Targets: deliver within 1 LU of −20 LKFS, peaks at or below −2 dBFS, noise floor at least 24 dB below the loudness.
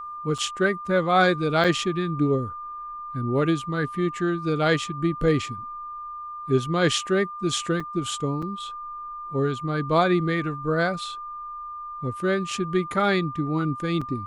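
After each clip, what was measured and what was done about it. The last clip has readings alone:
number of dropouts 5; longest dropout 5.1 ms; interfering tone 1,200 Hz; level of the tone −33 dBFS; integrated loudness −24.5 LKFS; sample peak −7.0 dBFS; target loudness −20.0 LKFS
→ repair the gap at 0:00.38/0:01.64/0:07.80/0:08.42/0:14.01, 5.1 ms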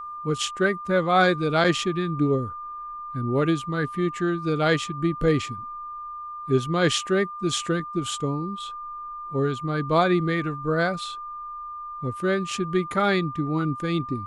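number of dropouts 0; interfering tone 1,200 Hz; level of the tone −33 dBFS
→ notch filter 1,200 Hz, Q 30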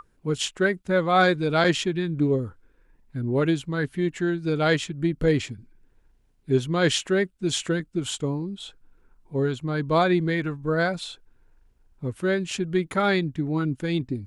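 interfering tone none found; integrated loudness −25.0 LKFS; sample peak −8.0 dBFS; target loudness −20.0 LKFS
→ level +5 dB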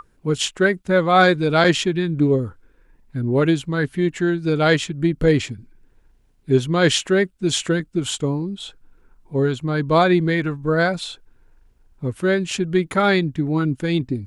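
integrated loudness −20.0 LKFS; sample peak −3.0 dBFS; background noise floor −58 dBFS

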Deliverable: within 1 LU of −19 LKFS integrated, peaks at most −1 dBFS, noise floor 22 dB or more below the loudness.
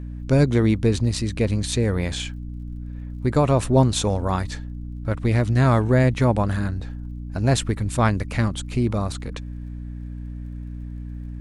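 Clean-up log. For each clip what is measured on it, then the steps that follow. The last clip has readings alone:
crackle rate 36 per second; mains hum 60 Hz; hum harmonics up to 300 Hz; level of the hum −31 dBFS; integrated loudness −22.0 LKFS; sample peak −6.0 dBFS; target loudness −19.0 LKFS
→ click removal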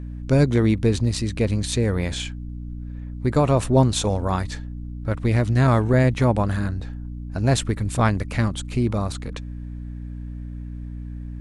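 crackle rate 0.088 per second; mains hum 60 Hz; hum harmonics up to 300 Hz; level of the hum −31 dBFS
→ mains-hum notches 60/120/180/240/300 Hz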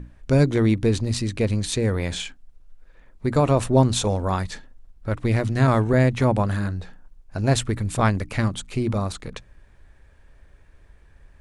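mains hum none found; integrated loudness −22.5 LKFS; sample peak −6.0 dBFS; target loudness −19.0 LKFS
→ level +3.5 dB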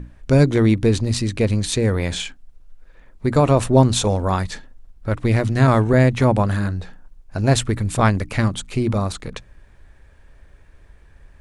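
integrated loudness −19.0 LKFS; sample peak −2.5 dBFS; background noise floor −49 dBFS

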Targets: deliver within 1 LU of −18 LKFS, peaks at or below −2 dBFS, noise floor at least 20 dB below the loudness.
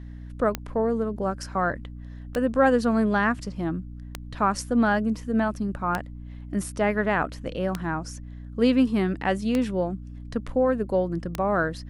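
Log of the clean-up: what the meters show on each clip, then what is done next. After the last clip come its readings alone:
number of clicks 7; mains hum 60 Hz; hum harmonics up to 300 Hz; level of the hum −36 dBFS; integrated loudness −25.5 LKFS; sample peak −8.5 dBFS; target loudness −18.0 LKFS
→ click removal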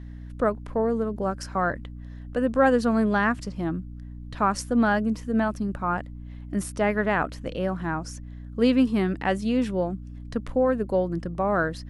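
number of clicks 0; mains hum 60 Hz; hum harmonics up to 300 Hz; level of the hum −36 dBFS
→ hum removal 60 Hz, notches 5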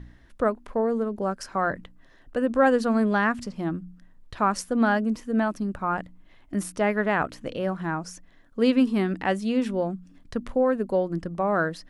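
mains hum none found; integrated loudness −25.5 LKFS; sample peak −8.5 dBFS; target loudness −18.0 LKFS
→ level +7.5 dB
brickwall limiter −2 dBFS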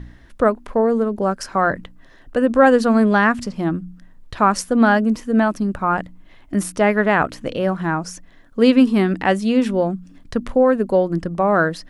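integrated loudness −18.5 LKFS; sample peak −2.0 dBFS; background noise floor −46 dBFS

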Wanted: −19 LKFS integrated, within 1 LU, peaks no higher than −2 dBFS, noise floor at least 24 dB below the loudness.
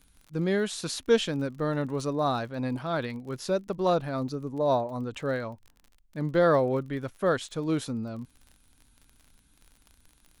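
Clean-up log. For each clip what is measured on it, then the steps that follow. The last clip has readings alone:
crackle rate 38 per second; integrated loudness −28.5 LKFS; sample peak −10.5 dBFS; target loudness −19.0 LKFS
→ click removal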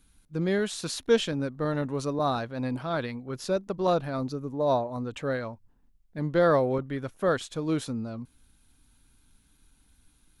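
crackle rate 0 per second; integrated loudness −28.5 LKFS; sample peak −10.5 dBFS; target loudness −19.0 LKFS
→ level +9.5 dB
brickwall limiter −2 dBFS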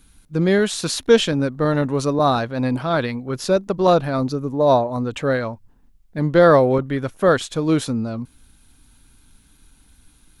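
integrated loudness −19.5 LKFS; sample peak −2.0 dBFS; background noise floor −55 dBFS

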